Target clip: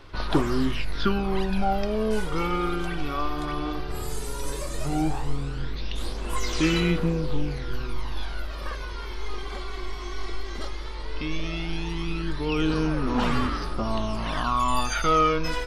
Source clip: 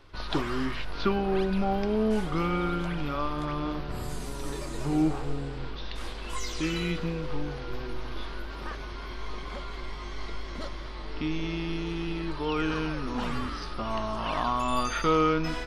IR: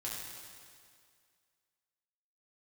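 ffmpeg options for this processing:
-af "highshelf=f=6.9k:g=8,aphaser=in_gain=1:out_gain=1:delay=2.7:decay=0.52:speed=0.15:type=sinusoidal,volume=1dB"

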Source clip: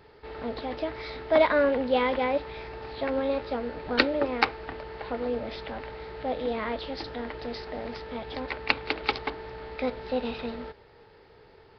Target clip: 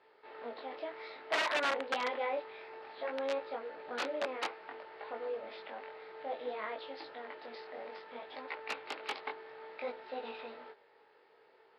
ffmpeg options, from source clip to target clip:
-af "flanger=delay=18:depth=5.1:speed=0.58,aeval=exprs='(mod(10*val(0)+1,2)-1)/10':c=same,highpass=480,lowpass=3.4k,volume=-4dB"

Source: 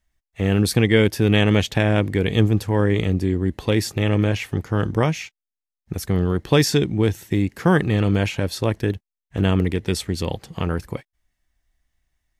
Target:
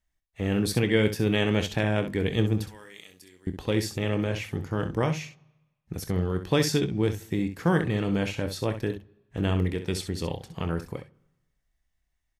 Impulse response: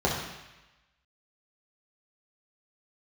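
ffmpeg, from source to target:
-filter_complex "[0:a]asettb=1/sr,asplit=3[a][b][c];[a]atrim=end=2.684[d];[b]atrim=start=2.68:end=3.47,asetpts=PTS-STARTPTS,afade=t=in:d=0.004:c=qsin,afade=t=out:st=0.786:d=0.004:c=qsin,aderivative[e];[c]atrim=start=3.466[f];[d][e]acrossfade=d=0.004:c1=hsin:c2=qsin[g];[g][f]acrossfade=d=0.004:c1=qsin:c2=hsin,aecho=1:1:24|65:0.266|0.316,asplit=2[h][i];[1:a]atrim=start_sample=2205[j];[i][j]afir=irnorm=-1:irlink=0,volume=-34.5dB[k];[h][k]amix=inputs=2:normalize=0,volume=-7dB"

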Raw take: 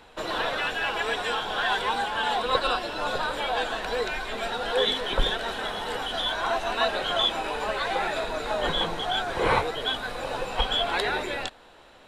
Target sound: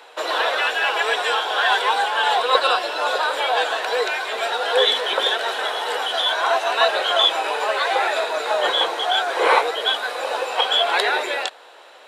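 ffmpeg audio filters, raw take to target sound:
-af "highpass=f=420:w=0.5412,highpass=f=420:w=1.3066,volume=7.5dB"

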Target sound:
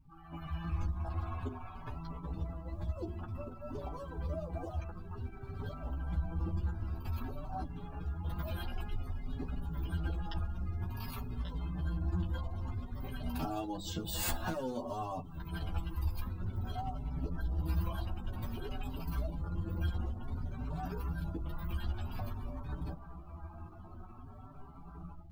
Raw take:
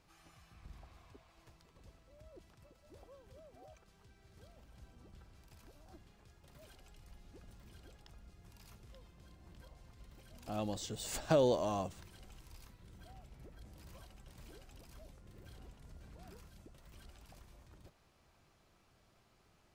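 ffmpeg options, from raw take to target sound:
-filter_complex "[0:a]asplit=2[a][b];[b]aeval=exprs='0.141*sin(PI/2*1.78*val(0)/0.141)':c=same,volume=-3dB[c];[a][c]amix=inputs=2:normalize=0,equalizer=f=6.7k:t=o:w=1.7:g=-14.5,acompressor=threshold=-45dB:ratio=10,aeval=exprs='val(0)+0.000316*(sin(2*PI*50*n/s)+sin(2*PI*2*50*n/s)/2+sin(2*PI*3*50*n/s)/3+sin(2*PI*4*50*n/s)/4+sin(2*PI*5*50*n/s)/5)':c=same,bandreject=f=50:t=h:w=6,bandreject=f=100:t=h:w=6,bandreject=f=150:t=h:w=6,bandreject=f=200:t=h:w=6,bandreject=f=250:t=h:w=6,bandreject=f=300:t=h:w=6,bandreject=f=350:t=h:w=6,bandreject=f=400:t=h:w=6,dynaudnorm=f=220:g=3:m=9dB,atempo=0.78,acrusher=bits=4:mode=log:mix=0:aa=0.000001,equalizer=f=125:t=o:w=1:g=-3,equalizer=f=500:t=o:w=1:g=-11,equalizer=f=2k:t=o:w=1:g=-6,afftdn=nr=25:nf=-58,asplit=2[d][e];[e]adelay=12,volume=-3dB[f];[d][f]amix=inputs=2:normalize=0,asplit=2[g][h];[h]adelay=4.8,afreqshift=0.53[i];[g][i]amix=inputs=2:normalize=1,volume=9dB"

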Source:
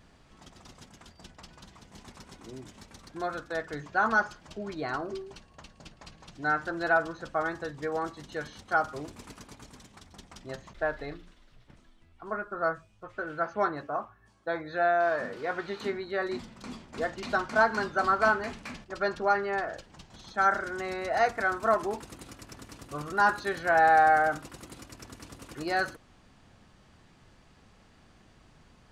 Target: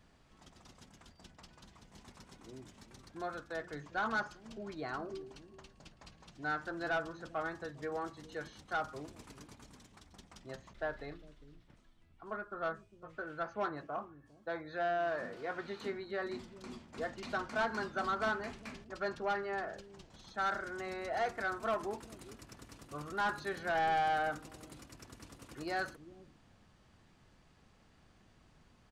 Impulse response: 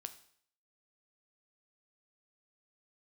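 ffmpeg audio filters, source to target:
-filter_complex "[0:a]acrossover=split=370[a][b];[a]aecho=1:1:404:0.398[c];[b]asoftclip=type=tanh:threshold=-21dB[d];[c][d]amix=inputs=2:normalize=0,volume=-7dB"

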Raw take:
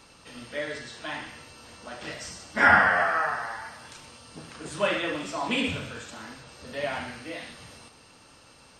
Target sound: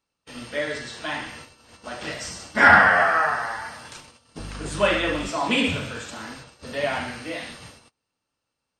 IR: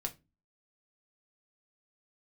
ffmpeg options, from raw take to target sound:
-filter_complex "[0:a]agate=range=-33dB:threshold=-46dB:ratio=16:detection=peak,acontrast=33,asettb=1/sr,asplit=3[a][b][c];[a]atrim=end=4.394[d];[b]atrim=start=4.39:end=5.29,asetpts=PTS-STARTPTS,afade=t=in:d=0.004:c=qsin,afade=t=out:st=0.896:d=0.004:c=qsin,aeval=exprs='val(0)+0.0178*(sin(2*PI*50*n/s)+sin(2*PI*2*50*n/s)/2+sin(2*PI*3*50*n/s)/3+sin(2*PI*4*50*n/s)/4+sin(2*PI*5*50*n/s)/5)':c=same[e];[c]atrim=start=5.286[f];[d][e]acrossfade=d=0.004:c1=hsin:c2=qsin[g];[g][f]acrossfade=d=0.004:c1=qsin:c2=hsin"

